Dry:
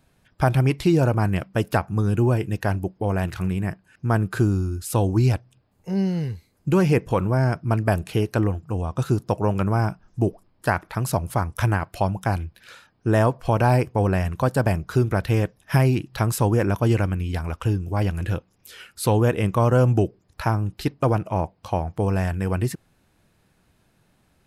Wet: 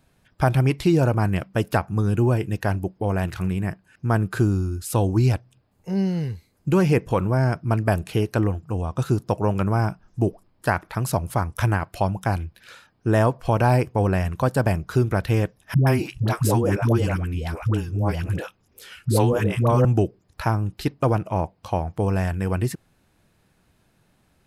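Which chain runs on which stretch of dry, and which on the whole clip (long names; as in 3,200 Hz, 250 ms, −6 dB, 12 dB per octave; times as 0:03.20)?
0:15.74–0:19.85: de-essing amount 35% + all-pass dispersion highs, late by 127 ms, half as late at 450 Hz
whole clip: no processing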